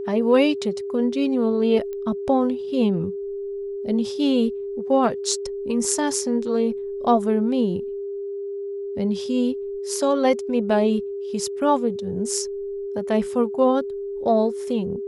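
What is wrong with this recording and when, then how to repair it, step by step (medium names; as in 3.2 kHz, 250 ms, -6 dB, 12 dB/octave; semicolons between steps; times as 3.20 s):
whine 400 Hz -27 dBFS
1.93 s: pop -22 dBFS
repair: de-click; band-stop 400 Hz, Q 30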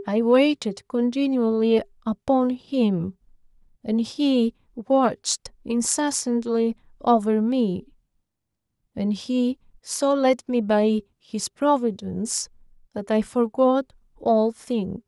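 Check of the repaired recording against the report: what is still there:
nothing left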